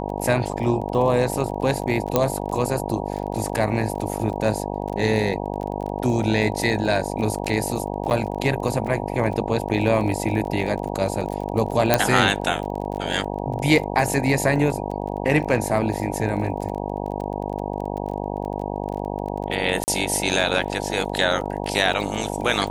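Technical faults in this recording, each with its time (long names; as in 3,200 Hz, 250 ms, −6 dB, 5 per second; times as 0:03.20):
mains buzz 50 Hz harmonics 19 −28 dBFS
surface crackle 24 per second −30 dBFS
0:02.16: click −4 dBFS
0:08.10–0:08.11: drop-out 8.7 ms
0:11.94: click 0 dBFS
0:19.84–0:19.88: drop-out 39 ms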